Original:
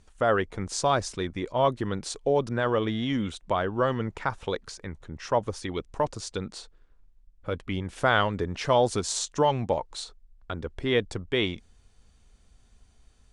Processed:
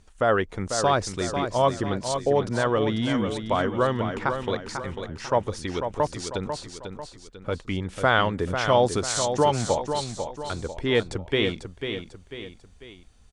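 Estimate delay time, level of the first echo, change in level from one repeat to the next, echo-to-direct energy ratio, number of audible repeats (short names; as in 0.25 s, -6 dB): 0.495 s, -7.5 dB, -7.0 dB, -6.5 dB, 3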